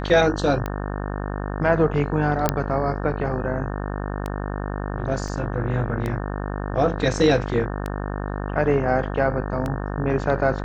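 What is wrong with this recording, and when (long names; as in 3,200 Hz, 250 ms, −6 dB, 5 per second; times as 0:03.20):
mains buzz 50 Hz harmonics 36 −28 dBFS
scratch tick 33 1/3 rpm −14 dBFS
0:02.49: click −4 dBFS
0:05.28: drop-out 3.3 ms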